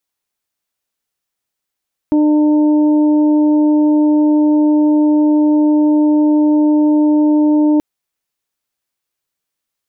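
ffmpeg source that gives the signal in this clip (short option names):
-f lavfi -i "aevalsrc='0.376*sin(2*PI*301*t)+0.075*sin(2*PI*602*t)+0.0447*sin(2*PI*903*t)':d=5.68:s=44100"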